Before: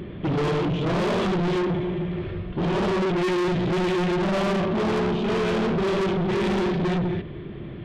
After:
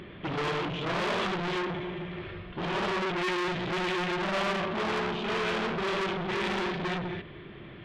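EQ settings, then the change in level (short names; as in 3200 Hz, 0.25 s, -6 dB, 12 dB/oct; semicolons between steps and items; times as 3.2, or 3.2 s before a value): tilt shelf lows -9 dB, about 840 Hz; high shelf 3900 Hz -12 dB; -3.0 dB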